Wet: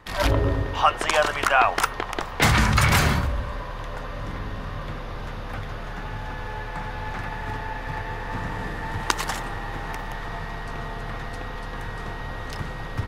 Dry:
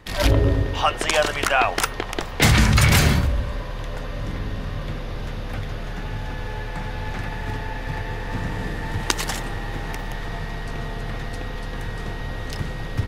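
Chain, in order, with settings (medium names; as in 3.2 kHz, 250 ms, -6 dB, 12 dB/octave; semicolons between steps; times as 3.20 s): peaking EQ 1.1 kHz +8 dB 1.4 oct; trim -4.5 dB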